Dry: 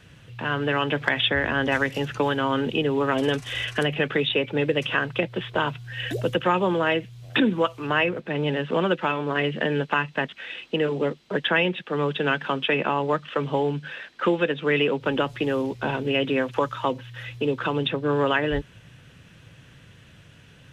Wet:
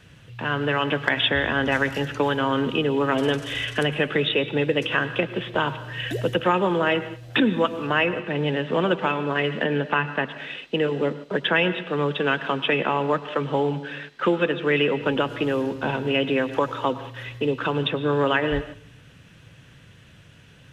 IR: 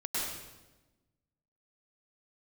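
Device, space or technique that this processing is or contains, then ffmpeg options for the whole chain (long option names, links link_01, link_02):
keyed gated reverb: -filter_complex "[0:a]asettb=1/sr,asplit=3[link_01][link_02][link_03];[link_01]atrim=end=9.644[link_04];[link_02]atrim=start=9.64:end=10.3,asetpts=PTS-STARTPTS,afade=type=in:duration=0.004:curve=qsin,afade=type=out:start_time=0.656:duration=0.004:curve=qsin,acrossover=split=4300[link_05][link_06];[link_06]acompressor=threshold=-59dB:ratio=4:attack=1:release=60[link_07];[link_05][link_07]amix=inputs=2:normalize=0[link_08];[link_03]atrim=start=10.296[link_09];[link_04][link_08]acrossfade=duration=0.004:curve1=hsin:curve2=qsin[link_10];[link_10][link_09]acrossfade=duration=0.004:curve1=qsin:curve2=hsin,asplit=3[link_11][link_12][link_13];[1:a]atrim=start_sample=2205[link_14];[link_12][link_14]afir=irnorm=-1:irlink=0[link_15];[link_13]apad=whole_len=913900[link_16];[link_15][link_16]sidechaingate=range=-13dB:threshold=-40dB:ratio=16:detection=peak,volume=-17dB[link_17];[link_11][link_17]amix=inputs=2:normalize=0"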